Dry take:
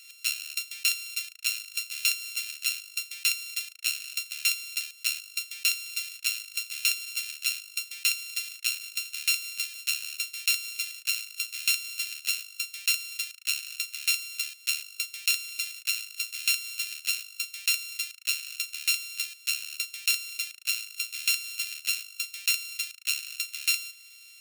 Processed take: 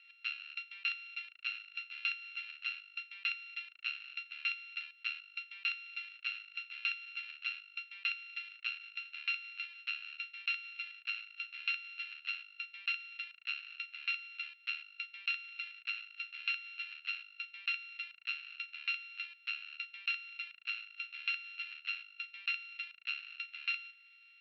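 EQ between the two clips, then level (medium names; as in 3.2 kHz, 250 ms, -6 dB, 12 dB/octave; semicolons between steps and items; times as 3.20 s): Bessel low-pass 2 kHz, order 8; 0.0 dB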